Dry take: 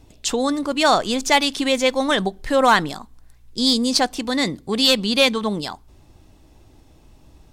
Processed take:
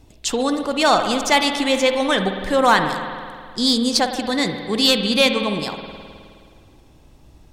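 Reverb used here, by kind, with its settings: spring tank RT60 2.1 s, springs 52 ms, chirp 25 ms, DRR 6 dB

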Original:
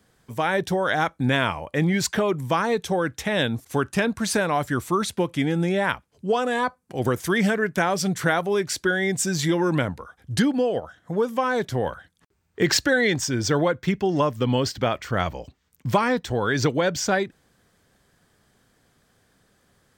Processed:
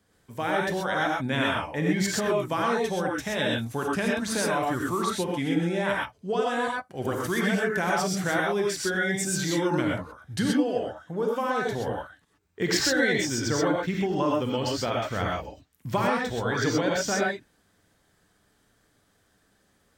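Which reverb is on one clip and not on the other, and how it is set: non-linear reverb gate 0.15 s rising, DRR -2.5 dB; gain -7 dB

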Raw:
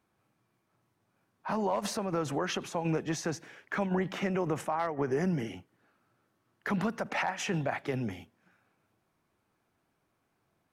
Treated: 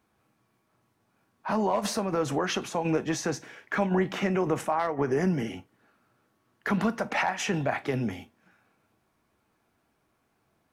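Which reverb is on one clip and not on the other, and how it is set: non-linear reverb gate 80 ms falling, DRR 10.5 dB; gain +4 dB

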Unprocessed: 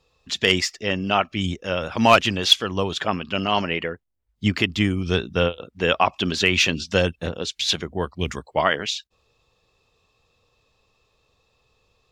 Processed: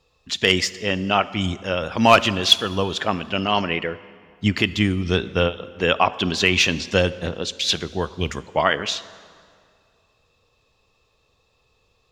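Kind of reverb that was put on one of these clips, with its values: plate-style reverb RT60 2.2 s, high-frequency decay 0.75×, DRR 15.5 dB; gain +1 dB

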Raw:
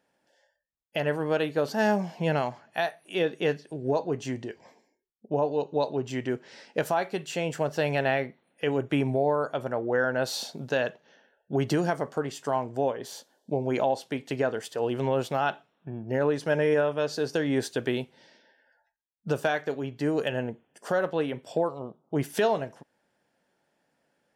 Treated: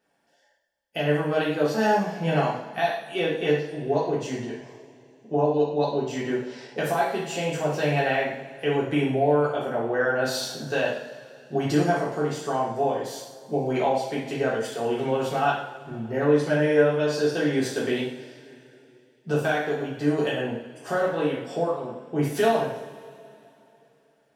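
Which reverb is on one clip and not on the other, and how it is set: two-slope reverb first 0.63 s, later 3.1 s, from -19 dB, DRR -6.5 dB; gain -4 dB

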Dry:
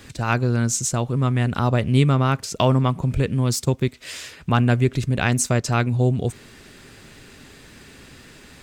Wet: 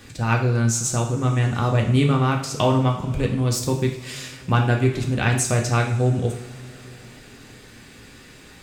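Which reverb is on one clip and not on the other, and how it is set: two-slope reverb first 0.58 s, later 4.3 s, from -21 dB, DRR 1 dB; gain -2.5 dB

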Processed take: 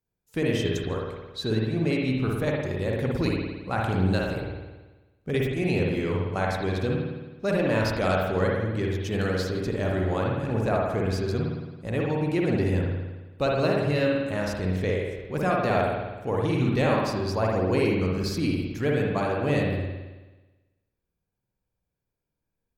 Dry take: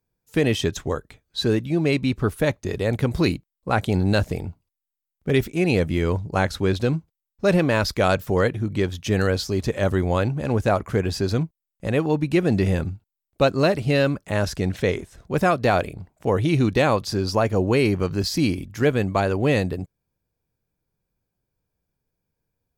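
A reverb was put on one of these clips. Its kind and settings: spring tank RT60 1.2 s, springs 54 ms, chirp 30 ms, DRR -2 dB; gain -8 dB

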